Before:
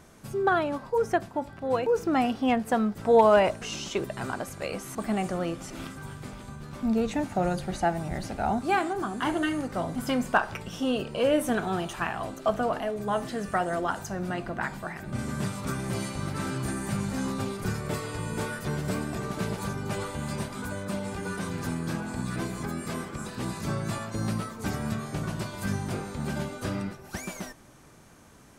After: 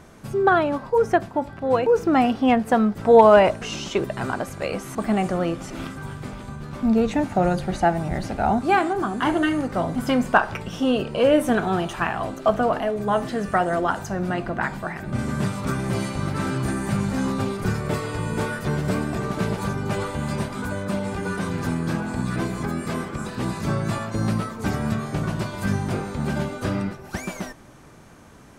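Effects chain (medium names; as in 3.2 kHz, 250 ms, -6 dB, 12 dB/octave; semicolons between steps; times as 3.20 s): treble shelf 4.3 kHz -7 dB; trim +6.5 dB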